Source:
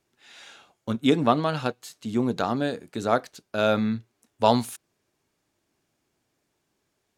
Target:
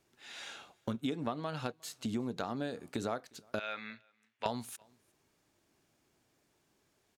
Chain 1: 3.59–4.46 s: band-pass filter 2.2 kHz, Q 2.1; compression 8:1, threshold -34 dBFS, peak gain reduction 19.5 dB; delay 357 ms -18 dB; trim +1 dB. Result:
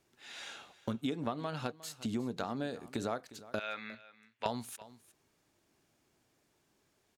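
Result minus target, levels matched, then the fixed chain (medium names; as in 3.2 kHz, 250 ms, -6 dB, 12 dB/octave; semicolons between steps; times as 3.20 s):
echo-to-direct +11.5 dB
3.59–4.46 s: band-pass filter 2.2 kHz, Q 2.1; compression 8:1, threshold -34 dBFS, peak gain reduction 19.5 dB; delay 357 ms -29.5 dB; trim +1 dB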